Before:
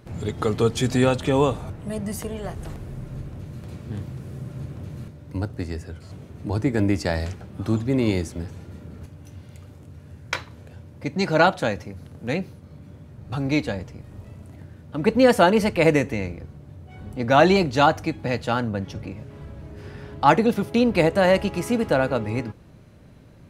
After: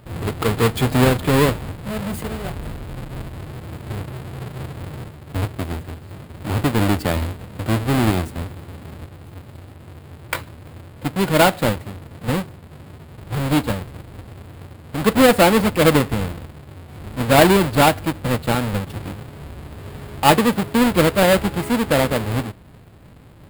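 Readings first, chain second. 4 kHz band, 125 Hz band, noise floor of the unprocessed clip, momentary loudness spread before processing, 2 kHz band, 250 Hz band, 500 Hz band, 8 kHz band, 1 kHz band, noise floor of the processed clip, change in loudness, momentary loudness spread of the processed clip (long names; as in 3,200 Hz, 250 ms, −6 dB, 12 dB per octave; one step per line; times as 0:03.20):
+6.5 dB, +5.0 dB, −47 dBFS, 21 LU, +3.5 dB, +3.5 dB, +2.0 dB, +9.5 dB, +3.0 dB, −43 dBFS, +3.5 dB, 21 LU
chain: each half-wave held at its own peak
parametric band 5,900 Hz −12.5 dB 0.34 octaves
level −1 dB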